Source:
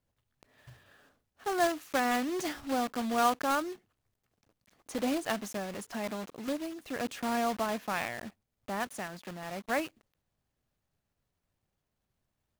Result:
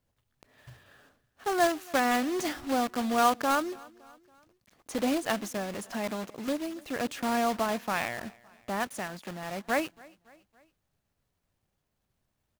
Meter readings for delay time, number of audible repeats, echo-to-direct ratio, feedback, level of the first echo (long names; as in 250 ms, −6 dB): 281 ms, 2, −22.5 dB, 53%, −24.0 dB